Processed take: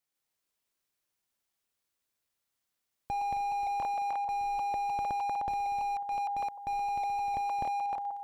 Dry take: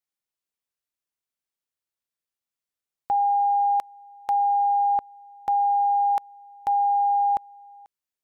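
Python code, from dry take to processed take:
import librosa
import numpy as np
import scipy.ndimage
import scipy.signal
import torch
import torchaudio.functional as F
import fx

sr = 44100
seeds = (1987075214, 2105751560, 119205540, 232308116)

y = fx.reverse_delay_fb(x, sr, ms=153, feedback_pct=61, wet_db=-1.0)
y = fx.slew_limit(y, sr, full_power_hz=16.0)
y = y * 10.0 ** (3.0 / 20.0)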